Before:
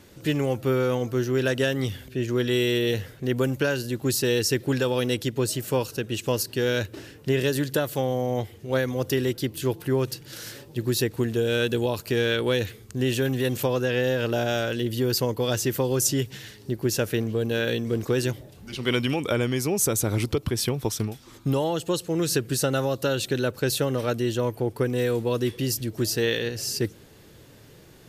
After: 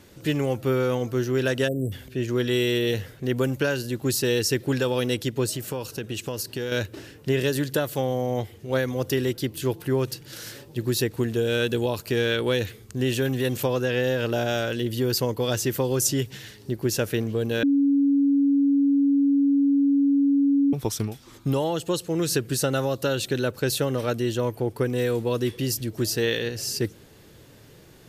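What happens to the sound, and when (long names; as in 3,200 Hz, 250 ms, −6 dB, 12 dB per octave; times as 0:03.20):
0:01.68–0:01.92: time-frequency box erased 730–7,500 Hz
0:05.49–0:06.72: downward compressor, threshold −25 dBFS
0:17.63–0:20.73: beep over 280 Hz −16.5 dBFS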